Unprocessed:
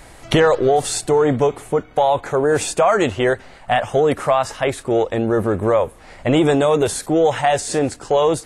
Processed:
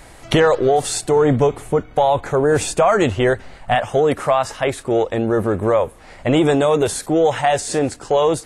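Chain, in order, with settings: 1.16–3.75 s: bass shelf 150 Hz +8 dB

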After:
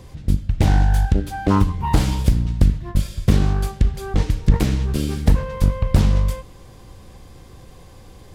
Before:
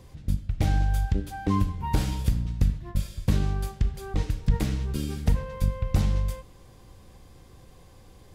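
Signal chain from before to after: loudspeaker Doppler distortion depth 0.67 ms; trim +8 dB

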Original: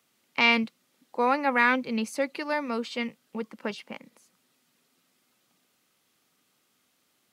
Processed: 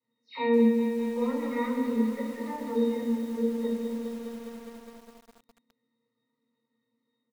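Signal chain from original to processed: delay that grows with frequency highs early, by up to 211 ms; high-pass 140 Hz 24 dB/octave; pitch-class resonator A#, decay 0.13 s; delay 109 ms -10 dB; reverberation, pre-delay 10 ms, DRR -2 dB; bit-crushed delay 205 ms, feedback 80%, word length 8-bit, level -7.5 dB

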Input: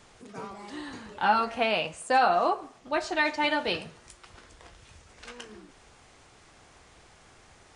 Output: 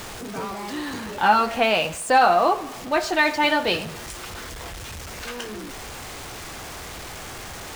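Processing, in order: jump at every zero crossing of -37.5 dBFS; trim +5.5 dB

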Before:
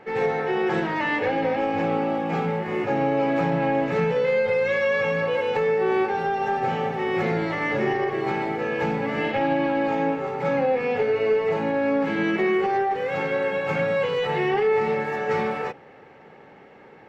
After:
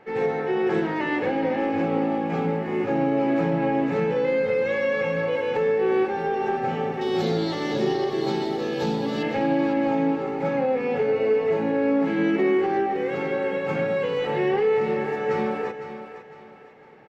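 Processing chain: 7.01–9.23 s: resonant high shelf 2.9 kHz +9.5 dB, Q 3; feedback delay 506 ms, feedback 38%, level -10.5 dB; dynamic bell 280 Hz, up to +7 dB, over -38 dBFS, Q 0.98; trim -4 dB

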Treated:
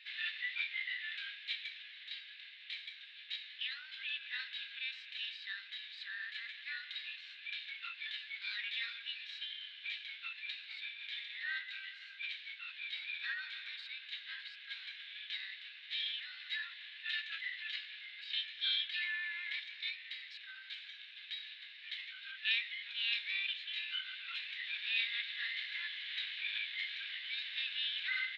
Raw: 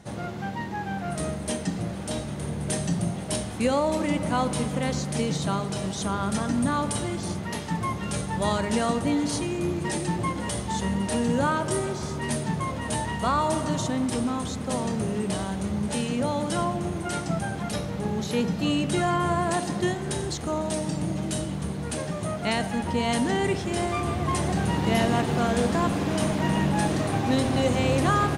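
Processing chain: differentiator; gain riding 2 s; Chebyshev band-pass 1.3–3.1 kHz, order 4; formant shift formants +4 st; AM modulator 260 Hz, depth 15%; trim +9 dB

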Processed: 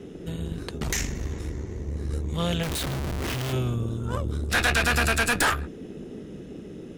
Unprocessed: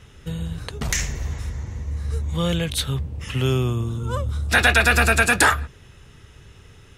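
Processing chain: band noise 140–430 Hz -35 dBFS; valve stage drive 17 dB, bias 0.75; 2.63–3.53 s: Schmitt trigger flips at -42.5 dBFS

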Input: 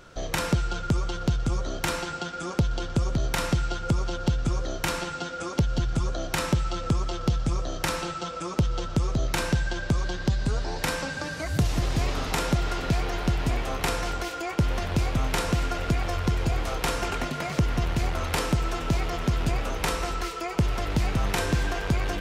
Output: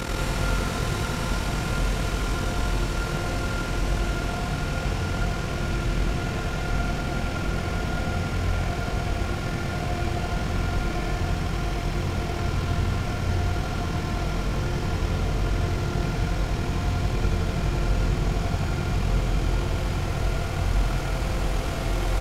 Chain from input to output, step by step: Paulstretch 20×, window 1.00 s, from 15.50 s; AM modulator 41 Hz, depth 55%; loudspeakers at several distances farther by 31 m -3 dB, 62 m -3 dB

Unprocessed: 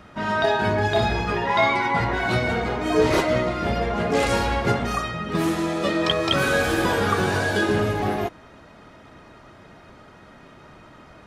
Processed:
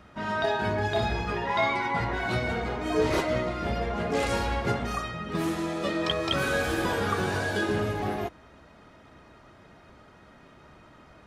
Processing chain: peaking EQ 67 Hz +6 dB 0.28 oct; trim -6 dB

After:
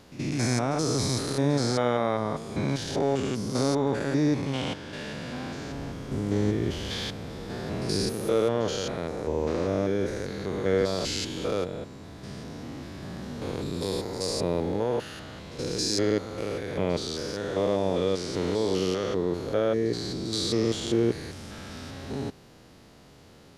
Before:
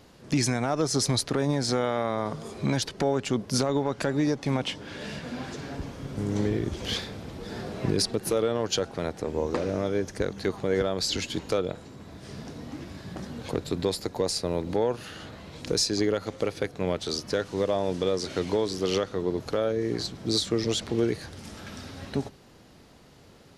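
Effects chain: spectrogram pixelated in time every 200 ms; reverse echo 75 ms -14 dB; trim +2.5 dB

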